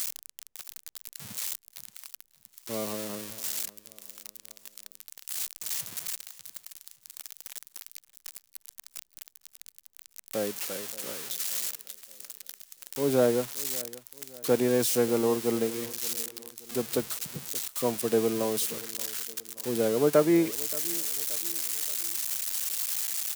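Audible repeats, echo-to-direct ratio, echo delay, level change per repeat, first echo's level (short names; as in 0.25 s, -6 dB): 3, -18.5 dB, 0.576 s, -7.0 dB, -19.5 dB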